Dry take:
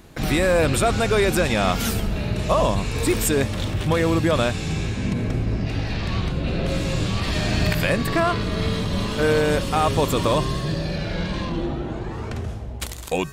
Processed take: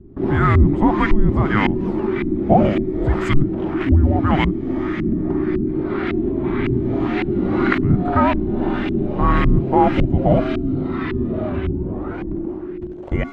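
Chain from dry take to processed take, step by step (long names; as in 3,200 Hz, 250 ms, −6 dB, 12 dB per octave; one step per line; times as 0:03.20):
auto-filter low-pass saw up 1.8 Hz 390–2,700 Hz
frequency shifter −420 Hz
level +2.5 dB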